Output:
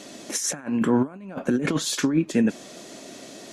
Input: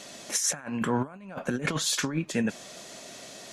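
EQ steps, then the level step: bell 300 Hz +11 dB 1.2 oct; 0.0 dB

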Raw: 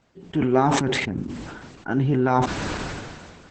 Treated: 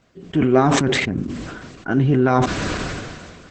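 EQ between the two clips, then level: notch 870 Hz, Q 5.6; +4.5 dB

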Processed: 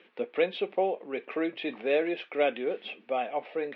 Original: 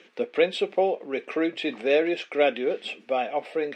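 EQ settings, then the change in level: LPF 3700 Hz 24 dB/oct; bell 960 Hz +3.5 dB 0.58 oct; -5.0 dB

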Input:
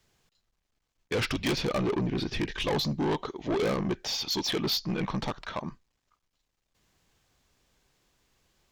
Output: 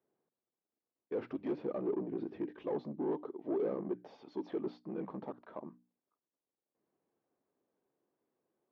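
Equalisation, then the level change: ladder band-pass 410 Hz, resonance 25%; notches 60/120/180/240/300 Hz; +4.5 dB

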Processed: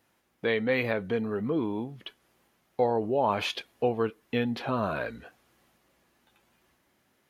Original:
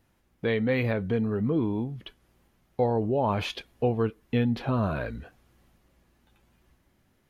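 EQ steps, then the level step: HPF 430 Hz 6 dB/oct; +2.5 dB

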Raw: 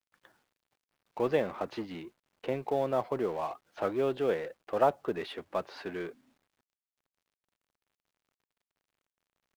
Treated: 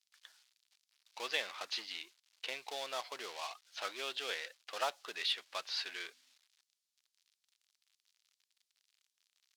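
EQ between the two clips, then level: band-pass 4400 Hz, Q 1.3; tilt +3 dB/oct; +7.5 dB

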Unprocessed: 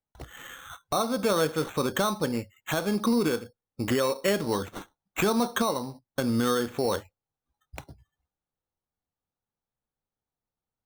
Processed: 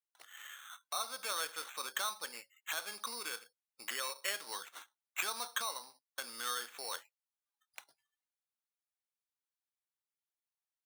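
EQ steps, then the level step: HPF 1400 Hz 12 dB/oct; bell 9600 Hz +5 dB 0.2 oct; -5.0 dB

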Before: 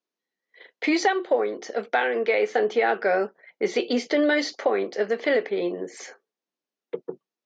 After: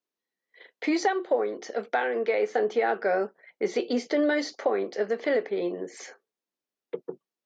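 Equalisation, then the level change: dynamic EQ 2900 Hz, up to -6 dB, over -40 dBFS, Q 1; -2.5 dB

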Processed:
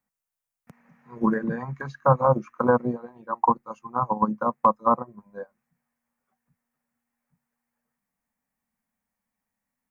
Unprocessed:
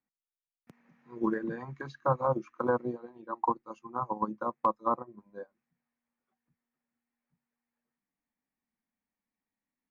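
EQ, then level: bell 330 Hz -14 dB 0.56 oct; bell 3700 Hz -9 dB 1.2 oct; dynamic EQ 250 Hz, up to +6 dB, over -47 dBFS, Q 0.92; +9.0 dB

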